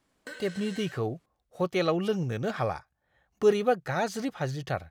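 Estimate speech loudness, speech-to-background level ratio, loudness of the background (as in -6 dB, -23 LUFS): -29.5 LUFS, 16.0 dB, -45.5 LUFS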